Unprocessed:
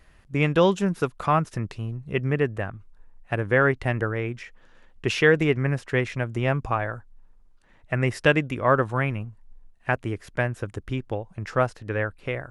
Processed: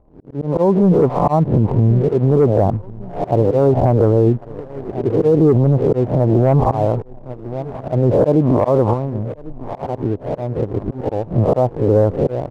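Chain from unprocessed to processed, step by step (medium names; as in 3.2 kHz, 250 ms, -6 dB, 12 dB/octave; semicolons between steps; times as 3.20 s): reverse spectral sustain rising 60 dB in 0.43 s; bass shelf 61 Hz -8.5 dB; slow attack 317 ms; 8.93–11.00 s: compression 5:1, threshold -39 dBFS, peak gain reduction 17.5 dB; steep low-pass 940 Hz 48 dB/octave; feedback delay 1095 ms, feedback 38%, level -22 dB; waveshaping leveller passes 1; peak limiter -24 dBFS, peak gain reduction 11.5 dB; level rider gain up to 13 dB; trim +5 dB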